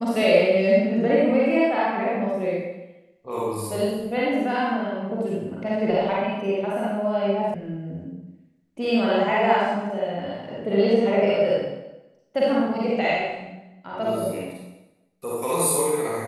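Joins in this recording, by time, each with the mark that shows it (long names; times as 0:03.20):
0:07.54: cut off before it has died away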